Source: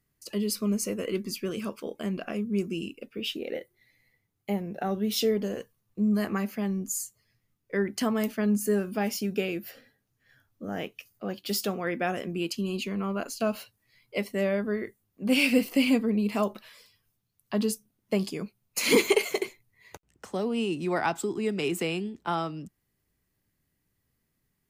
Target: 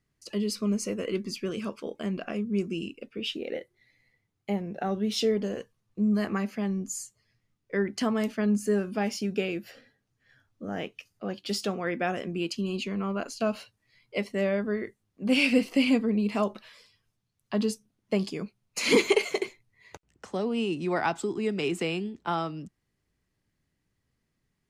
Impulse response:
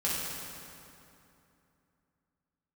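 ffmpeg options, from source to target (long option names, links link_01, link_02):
-af "lowpass=7300"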